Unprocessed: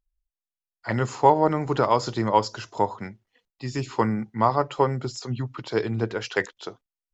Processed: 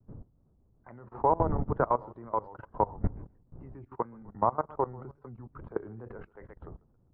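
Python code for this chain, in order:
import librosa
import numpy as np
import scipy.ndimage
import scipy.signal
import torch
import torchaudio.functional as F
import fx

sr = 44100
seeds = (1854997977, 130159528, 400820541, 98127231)

p1 = fx.dmg_wind(x, sr, seeds[0], corner_hz=120.0, level_db=-29.0)
p2 = fx.low_shelf(p1, sr, hz=350.0, db=-4.5)
p3 = np.sign(p2) * np.maximum(np.abs(p2) - 10.0 ** (-31.5 / 20.0), 0.0)
p4 = p2 + (p3 * 10.0 ** (-11.0 / 20.0))
p5 = scipy.signal.sosfilt(scipy.signal.butter(4, 1300.0, 'lowpass', fs=sr, output='sos'), p4)
p6 = fx.echo_feedback(p5, sr, ms=135, feedback_pct=26, wet_db=-16)
p7 = fx.level_steps(p6, sr, step_db=20)
p8 = fx.tremolo_random(p7, sr, seeds[1], hz=3.5, depth_pct=55)
p9 = fx.wow_flutter(p8, sr, seeds[2], rate_hz=2.1, depth_cents=120.0)
y = p9 * 10.0 ** (-1.5 / 20.0)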